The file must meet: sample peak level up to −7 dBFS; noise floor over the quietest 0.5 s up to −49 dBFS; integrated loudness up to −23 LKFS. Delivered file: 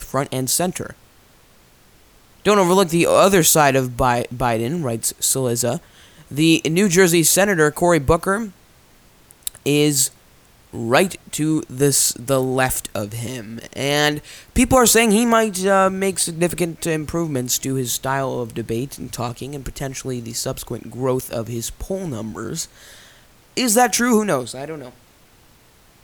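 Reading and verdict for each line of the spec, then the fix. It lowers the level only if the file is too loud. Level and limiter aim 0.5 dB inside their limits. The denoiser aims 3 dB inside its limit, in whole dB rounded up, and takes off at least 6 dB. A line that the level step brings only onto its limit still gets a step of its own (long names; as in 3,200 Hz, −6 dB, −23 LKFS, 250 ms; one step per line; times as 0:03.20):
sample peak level −2.0 dBFS: out of spec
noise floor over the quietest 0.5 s −52 dBFS: in spec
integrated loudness −18.5 LKFS: out of spec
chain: level −5 dB
brickwall limiter −7.5 dBFS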